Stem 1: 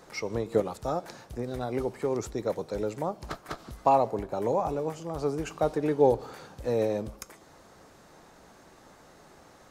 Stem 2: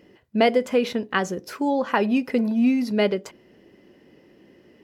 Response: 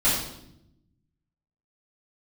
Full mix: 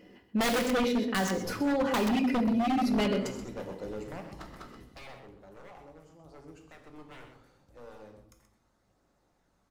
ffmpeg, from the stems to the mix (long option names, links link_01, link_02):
-filter_complex "[0:a]aeval=exprs='0.0631*(abs(mod(val(0)/0.0631+3,4)-2)-1)':channel_layout=same,aeval=exprs='val(0)+0.000794*(sin(2*PI*50*n/s)+sin(2*PI*2*50*n/s)/2+sin(2*PI*3*50*n/s)/3+sin(2*PI*4*50*n/s)/4+sin(2*PI*5*50*n/s)/5)':channel_layout=same,aphaser=in_gain=1:out_gain=1:delay=1.1:decay=0.24:speed=0.75:type=triangular,adelay=1100,volume=-10.5dB,afade=type=out:start_time=4.39:duration=0.7:silence=0.251189,asplit=3[link_01][link_02][link_03];[link_02]volume=-17.5dB[link_04];[link_03]volume=-8.5dB[link_05];[1:a]aecho=1:1:4.1:0.38,aeval=exprs='(mod(2.37*val(0)+1,2)-1)/2.37':channel_layout=same,volume=-2.5dB,asplit=4[link_06][link_07][link_08][link_09];[link_07]volume=-21dB[link_10];[link_08]volume=-11dB[link_11];[link_09]apad=whole_len=476683[link_12];[link_01][link_12]sidechaincompress=threshold=-27dB:ratio=8:attack=16:release=758[link_13];[2:a]atrim=start_sample=2205[link_14];[link_04][link_10]amix=inputs=2:normalize=0[link_15];[link_15][link_14]afir=irnorm=-1:irlink=0[link_16];[link_05][link_11]amix=inputs=2:normalize=0,aecho=0:1:129:1[link_17];[link_13][link_06][link_16][link_17]amix=inputs=4:normalize=0,aeval=exprs='0.133*(abs(mod(val(0)/0.133+3,4)-2)-1)':channel_layout=same,alimiter=limit=-21.5dB:level=0:latency=1:release=15"